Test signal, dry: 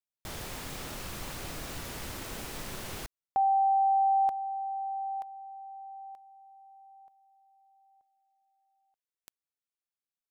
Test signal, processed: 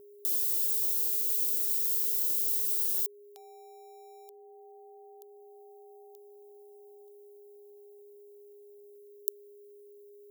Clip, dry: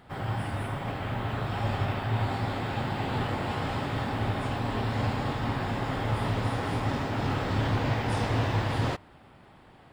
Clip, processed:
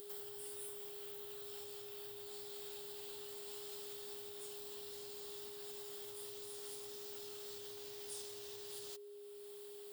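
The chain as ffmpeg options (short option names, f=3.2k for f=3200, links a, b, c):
-filter_complex "[0:a]asplit=2[a][b];[b]volume=27dB,asoftclip=hard,volume=-27dB,volume=-8dB[c];[a][c]amix=inputs=2:normalize=0,bandreject=f=980:w=19,acompressor=threshold=-41dB:ratio=4:attack=2.3:release=863:knee=6:detection=peak,aexciter=amount=4:drive=7.6:freq=3.1k,aemphasis=mode=production:type=riaa,aeval=exprs='val(0)+0.02*sin(2*PI*410*n/s)':c=same,volume=-16.5dB"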